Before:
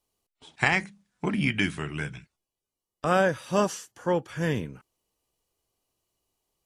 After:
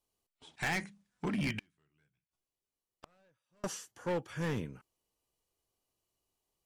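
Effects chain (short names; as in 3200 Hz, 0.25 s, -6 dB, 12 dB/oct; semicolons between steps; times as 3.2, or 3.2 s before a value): overloaded stage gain 23.5 dB; 1.59–3.64 flipped gate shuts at -39 dBFS, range -37 dB; gain -5.5 dB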